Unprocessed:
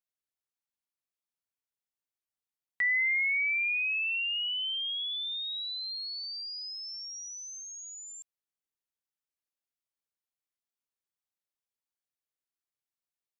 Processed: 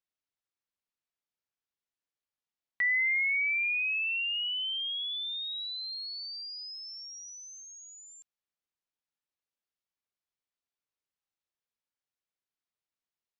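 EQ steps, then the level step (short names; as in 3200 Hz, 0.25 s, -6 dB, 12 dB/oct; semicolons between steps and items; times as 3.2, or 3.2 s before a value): LPF 5500 Hz; 0.0 dB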